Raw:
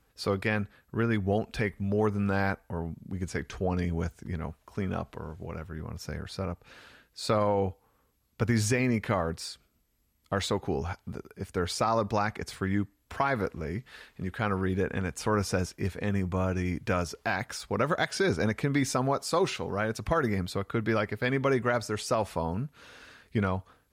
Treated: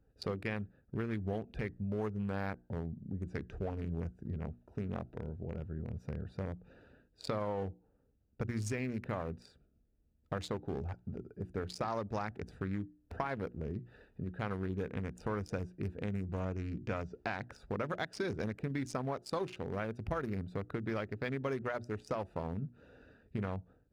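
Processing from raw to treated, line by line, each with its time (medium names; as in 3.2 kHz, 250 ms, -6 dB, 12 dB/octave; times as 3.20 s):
16.40–17.45 s: inverse Chebyshev low-pass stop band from 12 kHz
20.97–21.64 s: median filter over 3 samples
whole clip: local Wiener filter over 41 samples; compression 3:1, threshold -37 dBFS; hum notches 60/120/180/240/300/360 Hz; trim +1 dB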